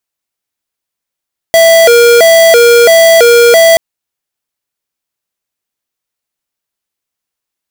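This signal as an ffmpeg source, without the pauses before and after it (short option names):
-f lavfi -i "aevalsrc='0.631*(2*lt(mod((567*t+94/1.5*(0.5-abs(mod(1.5*t,1)-0.5))),1),0.5)-1)':d=2.23:s=44100"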